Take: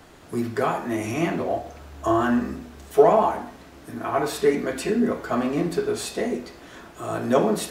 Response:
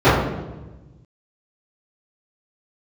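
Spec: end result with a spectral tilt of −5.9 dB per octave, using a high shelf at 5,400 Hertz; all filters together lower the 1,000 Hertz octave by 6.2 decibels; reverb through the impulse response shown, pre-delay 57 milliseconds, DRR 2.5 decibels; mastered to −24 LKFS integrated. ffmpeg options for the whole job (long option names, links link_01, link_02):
-filter_complex "[0:a]equalizer=frequency=1000:width_type=o:gain=-9,highshelf=frequency=5400:gain=-5,asplit=2[link_01][link_02];[1:a]atrim=start_sample=2205,adelay=57[link_03];[link_02][link_03]afir=irnorm=-1:irlink=0,volume=-31dB[link_04];[link_01][link_04]amix=inputs=2:normalize=0,volume=-2dB"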